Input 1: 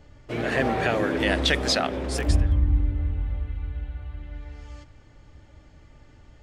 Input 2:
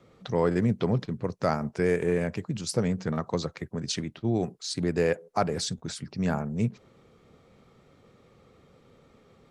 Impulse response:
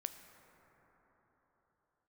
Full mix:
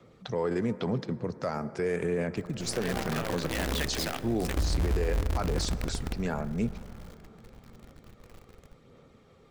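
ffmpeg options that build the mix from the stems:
-filter_complex "[0:a]lowshelf=f=84:g=11,acrusher=bits=4:dc=4:mix=0:aa=0.000001,adelay=2300,volume=-13dB,asplit=2[a][b];[b]volume=-3.5dB[c];[1:a]acrossover=split=170|3000[d][e][f];[d]acompressor=threshold=-40dB:ratio=6[g];[g][e][f]amix=inputs=3:normalize=0,aphaser=in_gain=1:out_gain=1:delay=2.6:decay=0.28:speed=0.89:type=sinusoidal,volume=-4dB,asplit=2[h][i];[i]volume=-4dB[j];[2:a]atrim=start_sample=2205[k];[c][j]amix=inputs=2:normalize=0[l];[l][k]afir=irnorm=-1:irlink=0[m];[a][h][m]amix=inputs=3:normalize=0,alimiter=limit=-20.5dB:level=0:latency=1:release=24"

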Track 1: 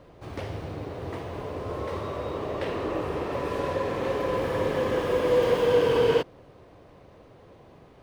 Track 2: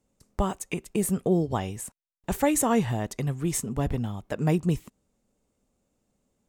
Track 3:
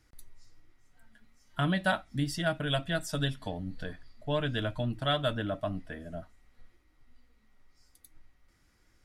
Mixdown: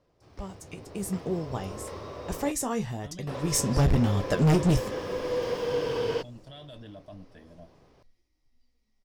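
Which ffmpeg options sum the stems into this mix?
-filter_complex "[0:a]volume=-18dB,asplit=3[a][b][c];[a]atrim=end=2.52,asetpts=PTS-STARTPTS,afade=t=out:st=2.516:d=0.004:c=hsin[d];[b]atrim=start=2.52:end=3.27,asetpts=PTS-STARTPTS,volume=0[e];[c]atrim=start=3.27,asetpts=PTS-STARTPTS,afade=t=in:d=0.004:c=hsin[f];[d][e][f]concat=n=3:v=0:a=1[g];[1:a]lowshelf=f=70:g=10,flanger=delay=9.9:depth=6.3:regen=51:speed=0.94:shape=triangular,volume=-0.5dB,afade=t=in:st=3.38:d=0.42:silence=0.223872[h];[2:a]equalizer=f=1.4k:t=o:w=0.67:g=-11.5,alimiter=level_in=5dB:limit=-24dB:level=0:latency=1:release=12,volume=-5dB,adelay=1450,volume=-19.5dB[i];[g][h][i]amix=inputs=3:normalize=0,equalizer=f=5.3k:w=2.5:g=11,asoftclip=type=hard:threshold=-28dB,dynaudnorm=f=240:g=7:m=10.5dB"

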